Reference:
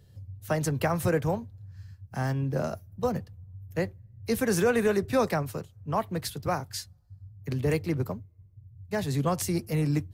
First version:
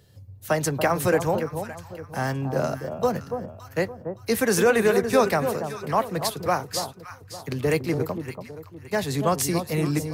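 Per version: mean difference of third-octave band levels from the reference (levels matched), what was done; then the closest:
8.0 dB: low-shelf EQ 180 Hz −11.5 dB
delay that swaps between a low-pass and a high-pass 284 ms, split 1,100 Hz, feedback 56%, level −7 dB
level +6.5 dB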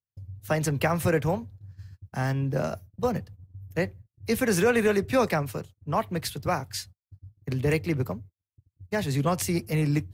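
1.0 dB: noise gate −45 dBFS, range −46 dB
dynamic equaliser 2,400 Hz, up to +5 dB, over −50 dBFS, Q 1.6
level +1.5 dB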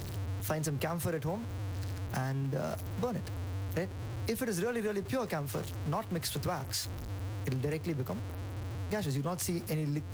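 11.5 dB: converter with a step at zero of −34.5 dBFS
downward compressor 6 to 1, threshold −31 dBFS, peak gain reduction 11.5 dB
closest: second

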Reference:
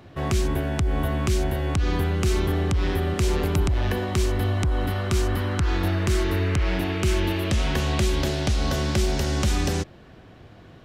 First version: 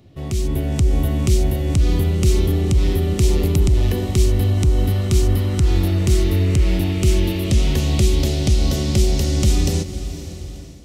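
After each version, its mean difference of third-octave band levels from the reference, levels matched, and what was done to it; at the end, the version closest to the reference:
5.0 dB: parametric band 1,200 Hz −13 dB 2.2 octaves
notch filter 1,600 Hz, Q 7.7
on a send: feedback delay with all-pass diffusion 509 ms, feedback 52%, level −13 dB
on the sum: automatic gain control gain up to 7 dB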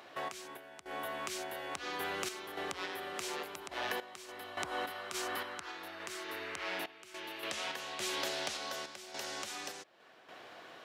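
9.0 dB: high-pass filter 650 Hz 12 dB per octave
downward compressor 2 to 1, threshold −41 dBFS, peak gain reduction 9 dB
sample-and-hold tremolo, depth 90%
soft clipping −27.5 dBFS, distortion −22 dB
level +4 dB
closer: first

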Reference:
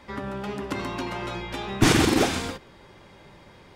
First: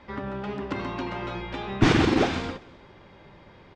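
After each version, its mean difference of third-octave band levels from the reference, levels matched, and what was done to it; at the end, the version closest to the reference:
3.0 dB: high-frequency loss of the air 160 metres
on a send: repeating echo 176 ms, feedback 45%, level −23 dB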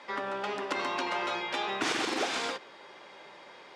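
7.5 dB: downward compressor 5 to 1, threshold −26 dBFS, peak gain reduction 12 dB
band-pass filter 490–6,400 Hz
level +3 dB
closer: first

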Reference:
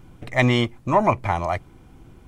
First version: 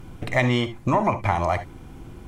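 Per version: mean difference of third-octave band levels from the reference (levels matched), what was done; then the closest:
5.5 dB: downward compressor 6 to 1, threshold −24 dBFS, peak gain reduction 11.5 dB
reverb whose tail is shaped and stops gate 90 ms rising, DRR 10.5 dB
level +6 dB
SBC 192 kbit/s 48,000 Hz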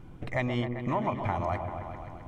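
8.5 dB: high-shelf EQ 4,000 Hz −10.5 dB
downward compressor, threshold −26 dBFS, peak gain reduction 12.5 dB
echo whose low-pass opens from repeat to repeat 131 ms, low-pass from 750 Hz, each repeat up 1 octave, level −6 dB
level −1 dB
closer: first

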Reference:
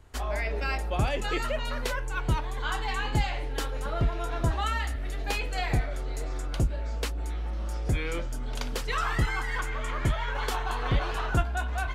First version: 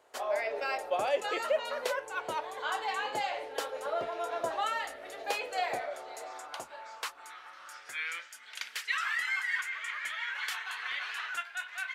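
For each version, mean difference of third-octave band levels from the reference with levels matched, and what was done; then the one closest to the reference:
9.0 dB: high-pass filter sweep 560 Hz → 1,900 Hz, 0:05.62–0:08.35
level −3.5 dB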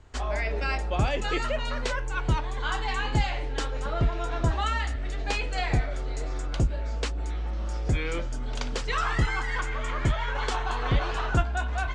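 2.0 dB: Butterworth low-pass 8,100 Hz 36 dB per octave
level +1.5 dB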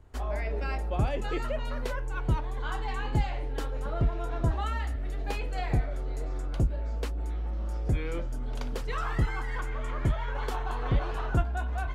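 4.0 dB: tilt shelving filter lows +5 dB, about 1,300 Hz
level −5 dB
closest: second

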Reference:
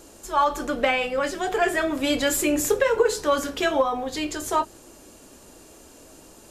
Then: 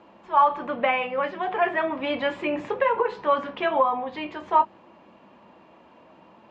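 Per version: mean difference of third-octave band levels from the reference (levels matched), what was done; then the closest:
7.5 dB: loudspeaker in its box 170–2,700 Hz, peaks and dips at 200 Hz +6 dB, 280 Hz −7 dB, 420 Hz −9 dB, 980 Hz +8 dB, 1,500 Hz −5 dB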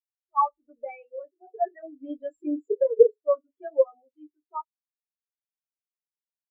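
22.5 dB: every bin expanded away from the loudest bin 4 to 1
level +4 dB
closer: first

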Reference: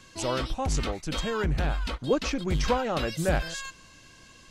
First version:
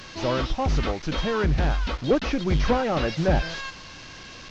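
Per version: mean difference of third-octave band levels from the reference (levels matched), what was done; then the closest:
5.0 dB: linear delta modulator 32 kbit/s, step −40 dBFS
level +4.5 dB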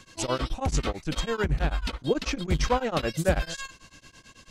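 2.5 dB: tremolo along a rectified sine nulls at 9.1 Hz
level +3.5 dB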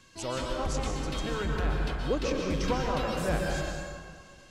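6.5 dB: dense smooth reverb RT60 2 s, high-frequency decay 0.5×, pre-delay 110 ms, DRR 0 dB
level −5.5 dB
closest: second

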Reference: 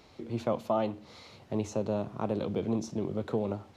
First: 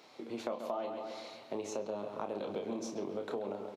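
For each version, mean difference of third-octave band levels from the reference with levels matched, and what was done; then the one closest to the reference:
6.5 dB: high-pass filter 330 Hz 12 dB per octave
double-tracking delay 30 ms −6.5 dB
bucket-brigade delay 134 ms, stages 4,096, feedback 52%, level −9.5 dB
downward compressor, threshold −34 dBFS, peak gain reduction 10 dB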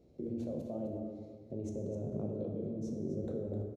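9.0 dB: drawn EQ curve 570 Hz 0 dB, 960 Hz −25 dB, 4,300 Hz −22 dB, 6,700 Hz −15 dB
output level in coarse steps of 24 dB
on a send: single-tap delay 257 ms −10 dB
on the sum: dense smooth reverb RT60 1.6 s, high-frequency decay 0.6×, DRR 1 dB
level +7.5 dB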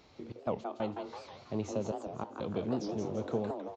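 5.0 dB: gate pattern "xx.x.xxxxx" 94 BPM −24 dB
on a send: echo with shifted repeats 164 ms, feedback 49%, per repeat +130 Hz, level −6 dB
on the sum: downsampling to 16,000 Hz
wow of a warped record 78 rpm, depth 250 cents
level −3.5 dB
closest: third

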